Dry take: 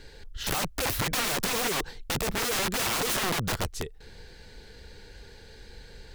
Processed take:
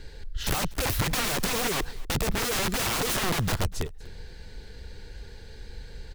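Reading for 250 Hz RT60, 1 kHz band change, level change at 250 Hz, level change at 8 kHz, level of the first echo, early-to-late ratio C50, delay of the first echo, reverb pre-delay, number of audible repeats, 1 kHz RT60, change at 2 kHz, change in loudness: none, 0.0 dB, +2.5 dB, 0.0 dB, -22.0 dB, none, 0.243 s, none, 1, none, 0.0 dB, +0.5 dB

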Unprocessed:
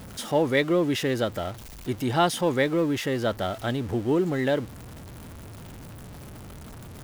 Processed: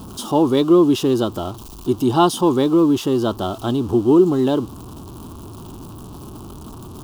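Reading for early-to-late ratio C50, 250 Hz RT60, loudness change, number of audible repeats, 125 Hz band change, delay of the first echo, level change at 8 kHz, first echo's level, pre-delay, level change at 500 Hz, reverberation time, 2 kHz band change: none, none, +8.0 dB, none, +5.0 dB, none, +5.0 dB, none, none, +7.0 dB, none, -7.0 dB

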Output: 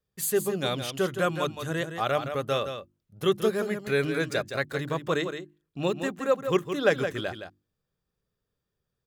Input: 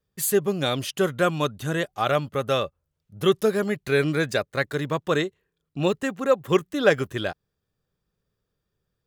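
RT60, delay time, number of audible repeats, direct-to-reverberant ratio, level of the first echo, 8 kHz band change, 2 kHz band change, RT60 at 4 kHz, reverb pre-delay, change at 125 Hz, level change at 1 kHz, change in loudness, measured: none, 0.167 s, 1, none, -8.5 dB, -3.5 dB, -3.5 dB, none, none, -4.5 dB, -3.5 dB, -3.5 dB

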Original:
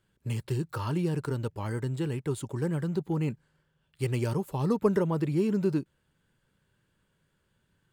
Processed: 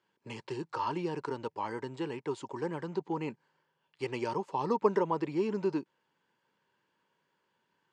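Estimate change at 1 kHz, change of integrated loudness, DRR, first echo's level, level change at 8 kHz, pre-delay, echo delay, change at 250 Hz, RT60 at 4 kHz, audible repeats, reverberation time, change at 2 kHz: +5.0 dB, -4.0 dB, none, none, n/a, none, none, -6.0 dB, none, none, none, -1.0 dB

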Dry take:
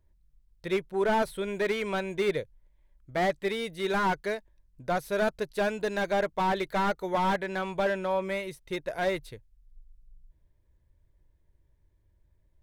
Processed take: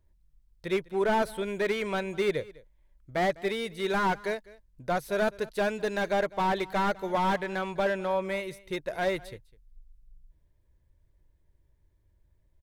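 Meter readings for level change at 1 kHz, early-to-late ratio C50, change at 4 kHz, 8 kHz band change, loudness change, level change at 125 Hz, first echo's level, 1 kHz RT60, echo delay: 0.0 dB, none, 0.0 dB, 0.0 dB, 0.0 dB, 0.0 dB, -21.0 dB, none, 0.203 s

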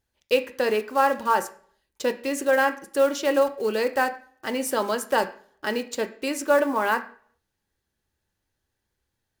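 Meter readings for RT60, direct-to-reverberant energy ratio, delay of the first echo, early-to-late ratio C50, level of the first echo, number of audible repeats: 0.55 s, 8.0 dB, none, 13.5 dB, none, none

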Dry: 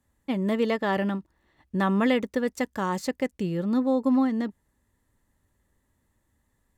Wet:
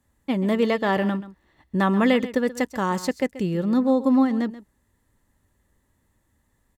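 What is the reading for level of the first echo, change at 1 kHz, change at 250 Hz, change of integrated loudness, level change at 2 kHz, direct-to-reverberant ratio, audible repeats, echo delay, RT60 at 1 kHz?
-15.5 dB, +3.5 dB, +3.5 dB, +3.5 dB, +3.5 dB, none, 1, 0.132 s, none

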